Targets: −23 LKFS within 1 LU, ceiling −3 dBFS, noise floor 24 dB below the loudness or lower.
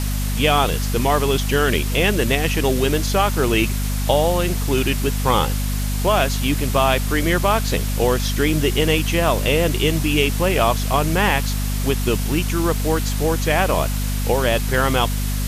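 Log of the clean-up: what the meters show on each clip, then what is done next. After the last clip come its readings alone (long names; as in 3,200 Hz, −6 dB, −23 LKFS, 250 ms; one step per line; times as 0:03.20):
mains hum 50 Hz; hum harmonics up to 250 Hz; level of the hum −20 dBFS; background noise floor −22 dBFS; target noise floor −44 dBFS; integrated loudness −19.5 LKFS; sample peak −3.0 dBFS; target loudness −23.0 LKFS
→ hum removal 50 Hz, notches 5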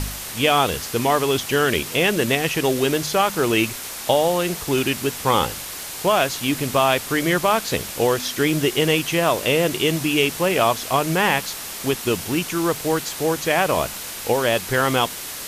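mains hum none found; background noise floor −33 dBFS; target noise floor −45 dBFS
→ broadband denoise 12 dB, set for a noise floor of −33 dBFS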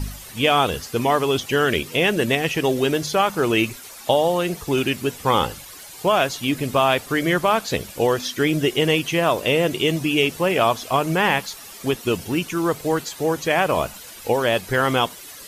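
background noise floor −40 dBFS; target noise floor −45 dBFS
→ broadband denoise 6 dB, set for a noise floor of −40 dBFS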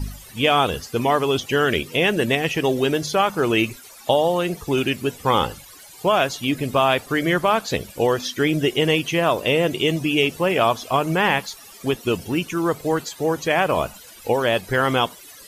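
background noise floor −44 dBFS; target noise floor −45 dBFS
→ broadband denoise 6 dB, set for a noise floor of −44 dBFS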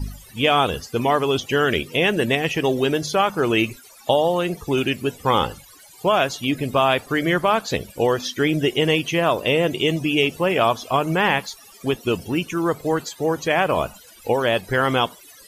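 background noise floor −47 dBFS; integrated loudness −21.0 LKFS; sample peak −4.5 dBFS; target loudness −23.0 LKFS
→ level −2 dB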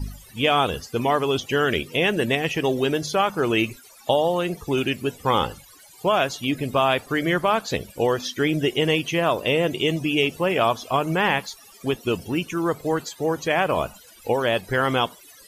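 integrated loudness −23.0 LKFS; sample peak −6.5 dBFS; background noise floor −49 dBFS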